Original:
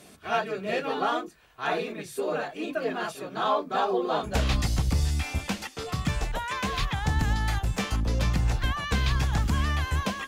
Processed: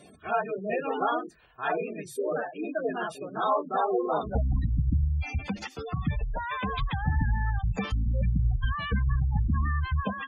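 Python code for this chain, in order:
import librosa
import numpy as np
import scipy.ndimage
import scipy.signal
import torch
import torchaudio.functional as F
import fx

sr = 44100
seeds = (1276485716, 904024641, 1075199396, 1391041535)

y = fx.spec_gate(x, sr, threshold_db=-15, keep='strong')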